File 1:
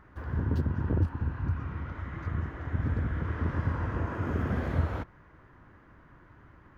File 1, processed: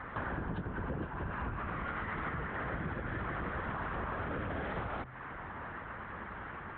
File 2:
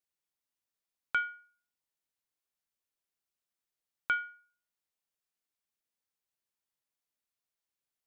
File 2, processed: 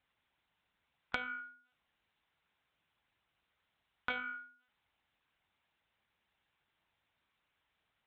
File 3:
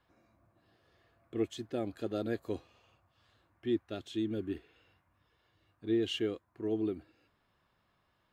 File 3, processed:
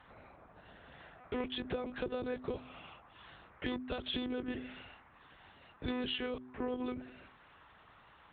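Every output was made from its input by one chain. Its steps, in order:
sub-octave generator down 1 octave, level −4 dB
mid-hump overdrive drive 21 dB, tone 2,900 Hz, clips at −13.5 dBFS
one-pitch LPC vocoder at 8 kHz 250 Hz
high-pass filter 46 Hz
hum removal 126.8 Hz, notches 3
downward compressor 16 to 1, threshold −37 dBFS
level +3 dB

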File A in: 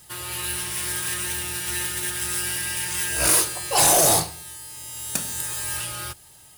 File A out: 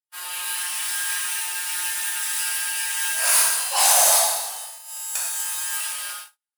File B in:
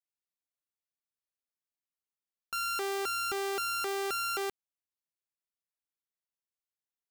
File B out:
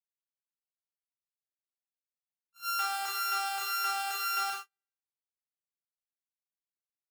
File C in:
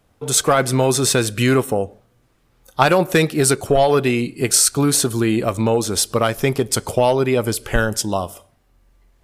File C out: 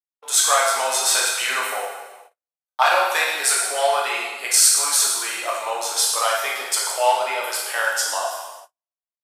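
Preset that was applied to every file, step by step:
dense smooth reverb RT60 1.3 s, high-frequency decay 0.95×, DRR −4.5 dB
noise gate −31 dBFS, range −48 dB
high-pass filter 740 Hz 24 dB per octave
level −3.5 dB

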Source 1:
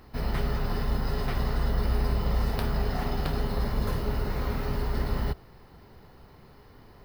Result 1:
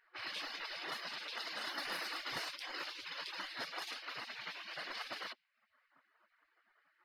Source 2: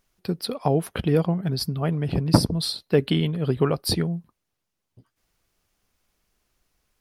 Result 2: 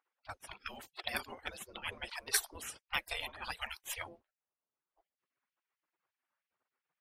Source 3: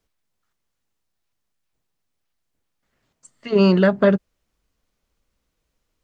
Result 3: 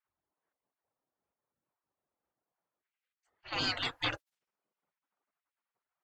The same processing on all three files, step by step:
reverb reduction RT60 0.72 s
low-pass that shuts in the quiet parts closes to 830 Hz, open at −20 dBFS
gate on every frequency bin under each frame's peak −30 dB weak
level +6.5 dB

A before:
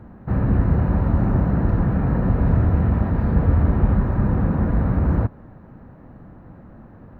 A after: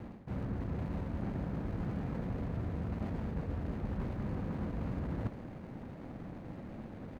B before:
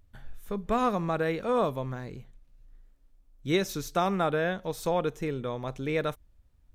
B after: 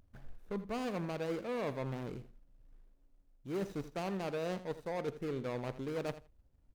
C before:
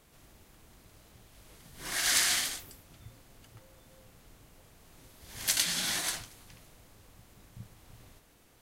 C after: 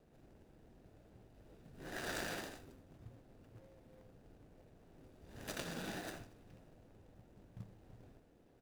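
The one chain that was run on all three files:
running median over 41 samples
low-shelf EQ 160 Hz −9.5 dB
reversed playback
downward compressor 8 to 1, threshold −37 dBFS
reversed playback
pitch vibrato 1.7 Hz 25 cents
repeating echo 82 ms, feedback 15%, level −14.5 dB
level +2.5 dB

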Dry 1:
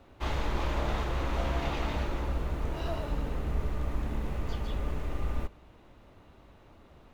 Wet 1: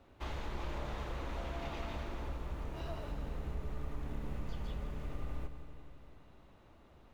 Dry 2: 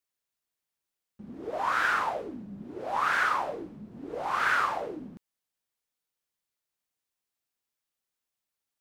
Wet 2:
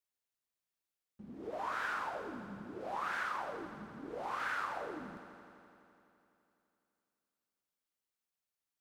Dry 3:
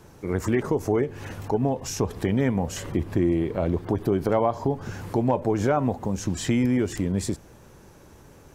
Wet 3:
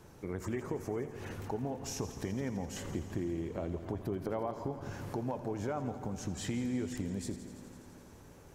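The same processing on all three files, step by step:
downward compressor 2 to 1, threshold −33 dBFS
on a send: echo machine with several playback heads 84 ms, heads first and second, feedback 74%, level −16 dB
on the sum: level −6 dB

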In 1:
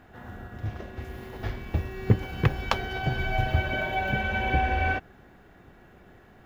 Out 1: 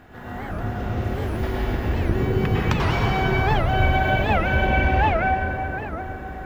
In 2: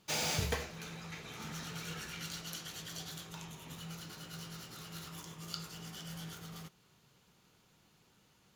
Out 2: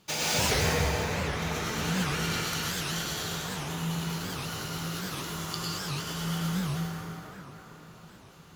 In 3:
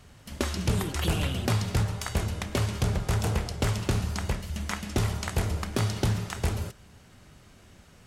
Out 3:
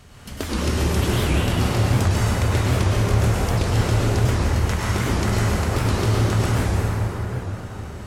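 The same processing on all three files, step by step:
downward compressor 2 to 1, threshold −35 dBFS
dense smooth reverb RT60 5 s, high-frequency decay 0.4×, pre-delay 90 ms, DRR −8.5 dB
wow of a warped record 78 rpm, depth 250 cents
level +5 dB

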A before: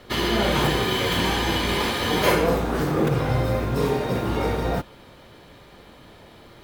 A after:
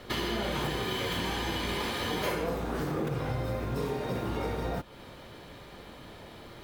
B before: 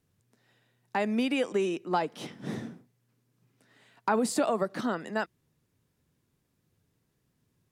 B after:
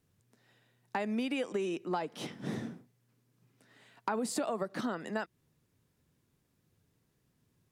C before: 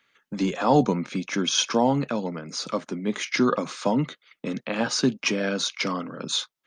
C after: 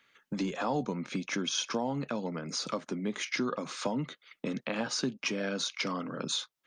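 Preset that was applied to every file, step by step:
downward compressor 3 to 1, threshold −32 dBFS

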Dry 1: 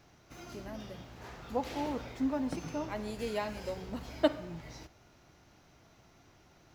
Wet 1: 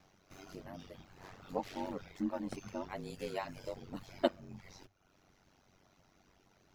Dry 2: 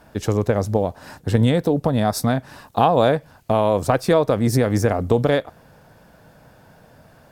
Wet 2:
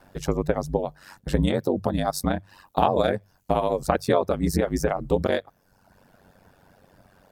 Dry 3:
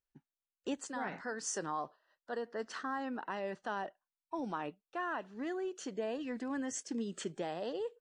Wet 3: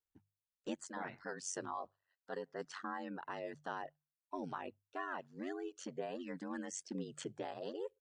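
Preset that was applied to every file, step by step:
reverb reduction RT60 0.84 s
ring modulation 47 Hz
mains-hum notches 50/100/150 Hz
level −1 dB

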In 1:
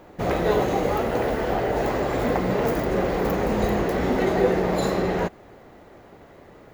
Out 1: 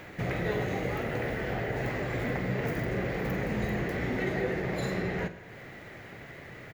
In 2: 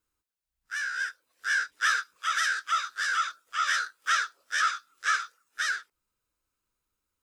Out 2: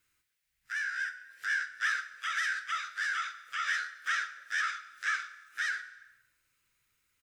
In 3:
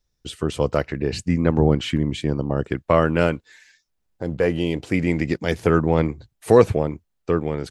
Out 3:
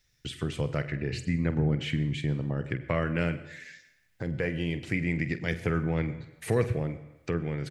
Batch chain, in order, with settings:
octave-band graphic EQ 125/1,000/2,000 Hz +11/−5/+11 dB
downward compressor 1.5 to 1, threshold −40 dBFS
double-tracking delay 47 ms −13 dB
dense smooth reverb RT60 0.82 s, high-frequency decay 0.75×, pre-delay 80 ms, DRR 15 dB
one half of a high-frequency compander encoder only
level −3 dB

